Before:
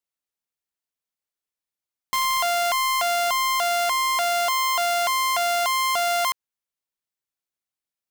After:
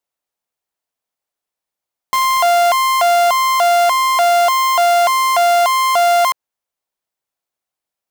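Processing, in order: peaking EQ 710 Hz +8 dB 1.5 oct; trim +4 dB

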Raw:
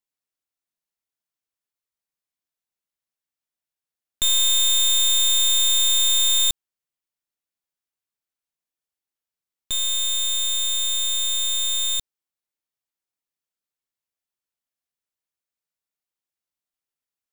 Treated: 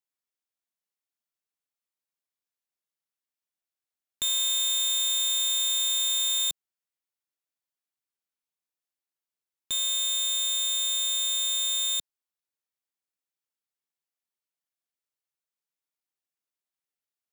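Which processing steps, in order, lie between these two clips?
high-pass 180 Hz 6 dB/octave; peak limiter -17.5 dBFS, peak gain reduction 3 dB; trim -3.5 dB

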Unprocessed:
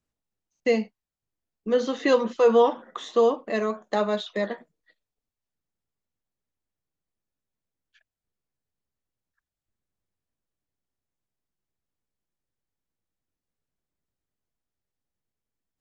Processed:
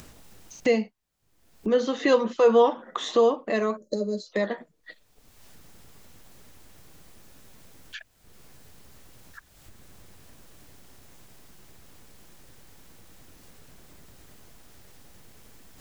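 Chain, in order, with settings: upward compressor, threshold -21 dBFS; time-frequency box 3.77–4.32 s, 610–4000 Hz -28 dB

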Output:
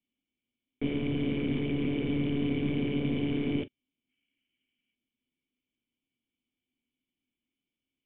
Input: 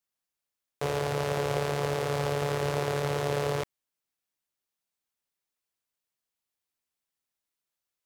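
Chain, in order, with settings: time-frequency box 4.09–4.94 s, 1.3–3.3 kHz +10 dB; sine folder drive 15 dB, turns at -14 dBFS; cascade formant filter i; reverberation, pre-delay 4 ms, DRR 13.5 dB

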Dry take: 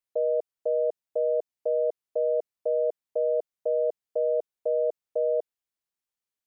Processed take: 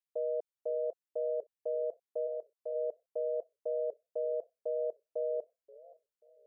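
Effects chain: 2.26–2.74 s: high-pass 750 Hz -> 570 Hz 6 dB/octave; modulated delay 532 ms, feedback 37%, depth 188 cents, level -21.5 dB; trim -8.5 dB

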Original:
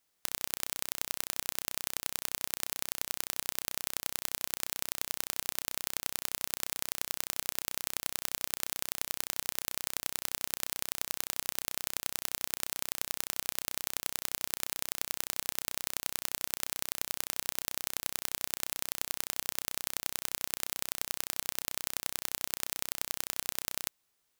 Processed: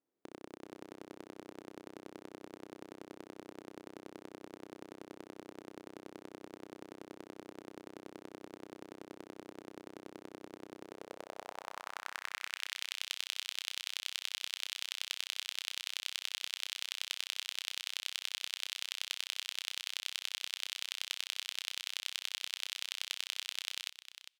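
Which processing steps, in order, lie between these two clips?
band-pass sweep 330 Hz -> 3.2 kHz, 10.79–12.74 s; delay 403 ms -12 dB; trim +6.5 dB

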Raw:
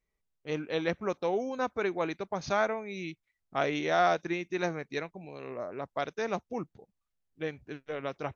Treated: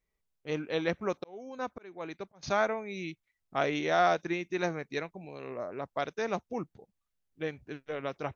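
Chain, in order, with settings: 0.87–2.43 s: slow attack 664 ms

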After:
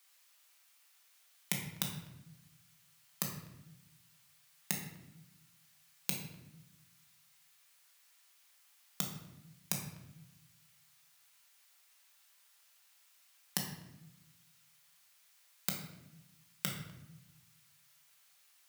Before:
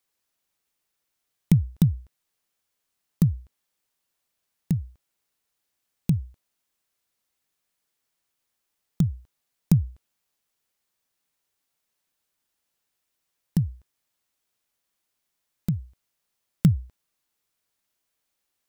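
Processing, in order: high-pass 1.1 kHz 12 dB/octave; peak limiter -25 dBFS, peak gain reduction 8.5 dB; reverberation RT60 0.95 s, pre-delay 5 ms, DRR -0.5 dB; trim +10.5 dB

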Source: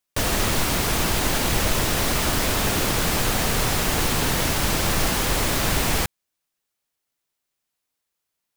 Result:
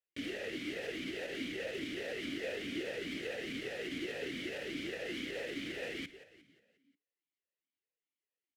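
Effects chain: peak limiter -15 dBFS, peak gain reduction 7.5 dB; on a send: frequency-shifting echo 178 ms, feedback 49%, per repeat -58 Hz, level -15 dB; on the sum: talking filter e-i 2.4 Hz; trim -1 dB

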